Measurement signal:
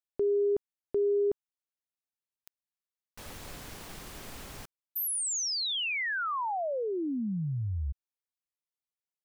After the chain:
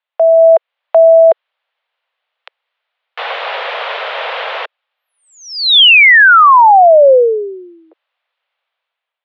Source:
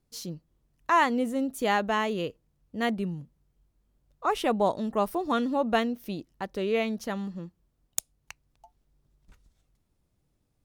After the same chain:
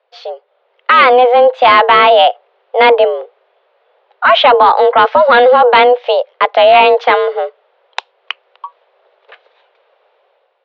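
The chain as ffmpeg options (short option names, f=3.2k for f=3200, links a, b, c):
-af "highpass=f=250:t=q:w=0.5412,highpass=f=250:t=q:w=1.307,lowpass=f=3.3k:t=q:w=0.5176,lowpass=f=3.3k:t=q:w=0.7071,lowpass=f=3.3k:t=q:w=1.932,afreqshift=250,dynaudnorm=f=180:g=7:m=10dB,apsyclip=20dB,volume=-2dB"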